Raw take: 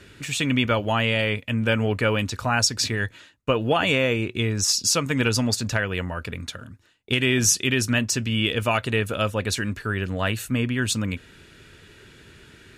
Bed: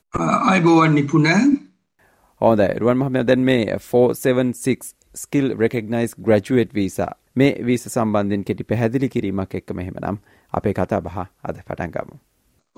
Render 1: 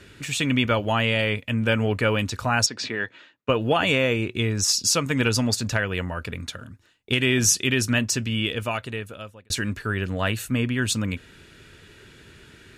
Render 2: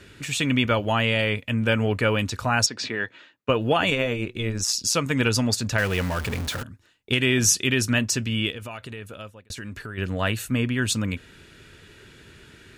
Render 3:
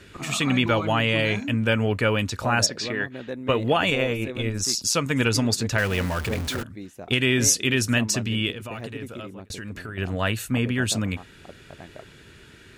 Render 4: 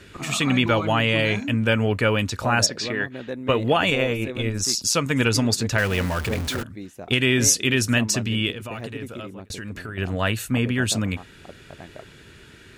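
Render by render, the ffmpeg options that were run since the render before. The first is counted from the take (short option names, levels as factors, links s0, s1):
-filter_complex "[0:a]asettb=1/sr,asplit=3[s0][s1][s2];[s0]atrim=end=2.664[s3];[s1]atrim=start=2.66:end=3.49,asetpts=PTS-STARTPTS,afade=t=in:d=0.004:c=qsin,afade=t=out:st=0.826:d=0.004:c=qsin,highpass=240,lowpass=3600[s4];[s2]atrim=start=3.486[s5];[s3][s4]acrossfade=d=0.004:c1=hsin:c2=qsin[s6];[s6][s5]acrossfade=d=0.004:c1=qsin:c2=hsin,asplit=2[s7][s8];[s7]atrim=end=9.5,asetpts=PTS-STARTPTS,afade=t=out:st=8.1:d=1.4[s9];[s8]atrim=start=9.5,asetpts=PTS-STARTPTS,afade=t=in:d=0.004:c=hsin[s10];[s9][s10]concat=n=2:v=0:a=1"
-filter_complex "[0:a]asettb=1/sr,asplit=3[s0][s1][s2];[s0]atrim=end=3.904[s3];[s1]atrim=start=3.9:end=4.95,asetpts=PTS-STARTPTS,afade=t=in:d=0.004:c=qsin,afade=t=out:st=1.046:d=0.004:c=qsin,tremolo=f=120:d=0.621[s4];[s2]atrim=start=4.946[s5];[s3][s4]acrossfade=d=0.004:c1=hsin:c2=qsin[s6];[s6][s5]acrossfade=d=0.004:c1=qsin:c2=hsin,asettb=1/sr,asplit=3[s7][s8][s9];[s7]atrim=end=5.784[s10];[s8]atrim=start=5.78:end=6.63,asetpts=PTS-STARTPTS,afade=t=in:d=0.004:c=qsin,afade=t=out:st=0.846:d=0.004:c=qsin,aeval=exprs='val(0)+0.5*0.0422*sgn(val(0))':c=same[s11];[s9]atrim=start=6.626[s12];[s10][s11]acrossfade=d=0.004:c1=hsin:c2=qsin[s13];[s13][s12]acrossfade=d=0.004:c1=qsin:c2=hsin,asplit=3[s14][s15][s16];[s14]afade=t=out:st=8.5:d=0.02[s17];[s15]acompressor=threshold=0.0251:ratio=6:attack=3.2:release=140:knee=1:detection=peak,afade=t=in:st=8.5:d=0.02,afade=t=out:st=9.97:d=0.02[s18];[s16]afade=t=in:st=9.97:d=0.02[s19];[s17][s18][s19]amix=inputs=3:normalize=0"
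-filter_complex "[1:a]volume=0.126[s0];[0:a][s0]amix=inputs=2:normalize=0"
-af "volume=1.19"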